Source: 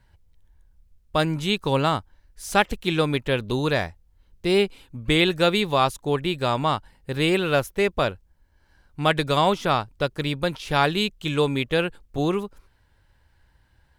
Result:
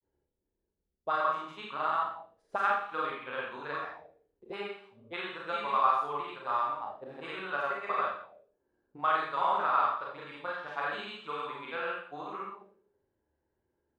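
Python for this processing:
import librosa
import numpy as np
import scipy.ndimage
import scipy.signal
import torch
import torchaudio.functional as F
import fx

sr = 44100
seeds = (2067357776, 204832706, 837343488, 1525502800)

y = fx.granulator(x, sr, seeds[0], grain_ms=100.0, per_s=20.0, spray_ms=100.0, spread_st=0)
y = fx.rev_schroeder(y, sr, rt60_s=0.56, comb_ms=28, drr_db=-3.0)
y = fx.auto_wah(y, sr, base_hz=360.0, top_hz=1200.0, q=3.3, full_db=-19.5, direction='up')
y = F.gain(torch.from_numpy(y), -3.5).numpy()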